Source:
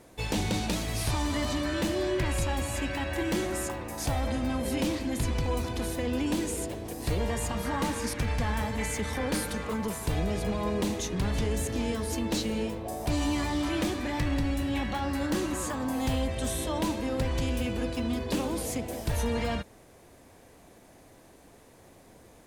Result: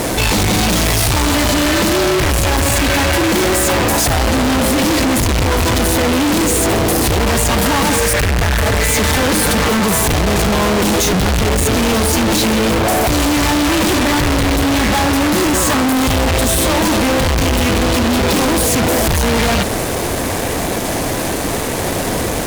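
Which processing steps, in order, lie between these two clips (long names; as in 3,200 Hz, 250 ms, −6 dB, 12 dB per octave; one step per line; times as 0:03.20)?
0:07.98–0:08.88: phaser with its sweep stopped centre 1,000 Hz, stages 6
fuzz pedal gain 57 dB, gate −59 dBFS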